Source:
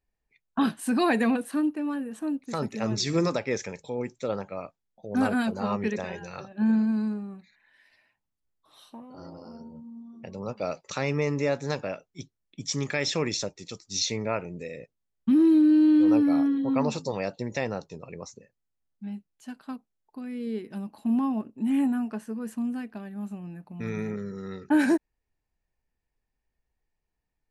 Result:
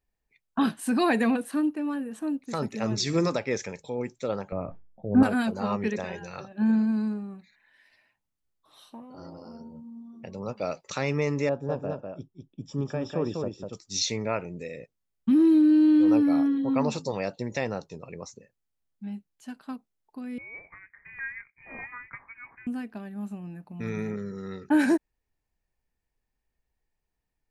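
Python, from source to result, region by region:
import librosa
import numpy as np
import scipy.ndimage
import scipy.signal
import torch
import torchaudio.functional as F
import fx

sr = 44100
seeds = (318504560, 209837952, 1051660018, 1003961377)

y = fx.chain(x, sr, fx.lowpass(hz=1900.0, slope=12),
    fx.tilt_eq(slope=-3.5),
    fx.sustainer(db_per_s=76.0), at=(4.52, 5.23))
y = fx.chain(y, sr, fx.moving_average(points=21),
    fx.echo_single(ms=198, db=-4.5), at=(11.49, 13.73))
y = fx.chain(y, sr, fx.highpass(hz=470.0, slope=24),
    fx.tilt_eq(slope=2.0),
    fx.freq_invert(carrier_hz=2700), at=(20.38, 22.67))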